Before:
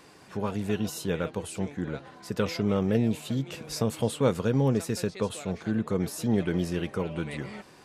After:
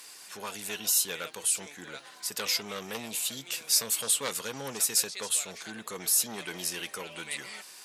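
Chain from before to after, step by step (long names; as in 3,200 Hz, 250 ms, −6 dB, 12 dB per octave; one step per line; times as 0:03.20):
sine wavefolder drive 7 dB, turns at −10 dBFS
first difference
level +3 dB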